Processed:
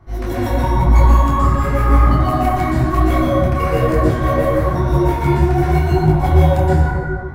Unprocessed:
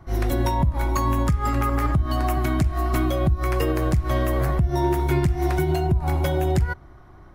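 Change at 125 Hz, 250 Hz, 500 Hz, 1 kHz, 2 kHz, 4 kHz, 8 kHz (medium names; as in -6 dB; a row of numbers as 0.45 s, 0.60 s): +7.5 dB, +7.0 dB, +8.0 dB, +8.5 dB, +6.5 dB, +2.5 dB, +0.5 dB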